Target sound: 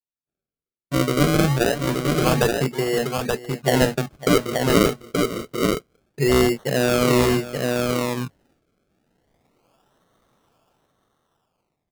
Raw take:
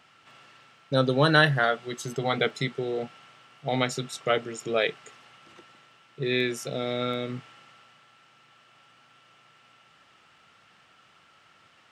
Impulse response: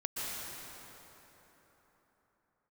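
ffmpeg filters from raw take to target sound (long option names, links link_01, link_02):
-af "afwtdn=0.0141,highshelf=frequency=4900:gain=-11,acontrast=56,equalizer=frequency=1500:width=3.4:gain=-6.5,dynaudnorm=framelen=340:gausssize=9:maxgain=15dB,agate=range=-33dB:threshold=-52dB:ratio=3:detection=peak,acrusher=samples=35:mix=1:aa=0.000001:lfo=1:lforange=35:lforate=0.27,aecho=1:1:552|878:0.168|0.631,volume=-3dB"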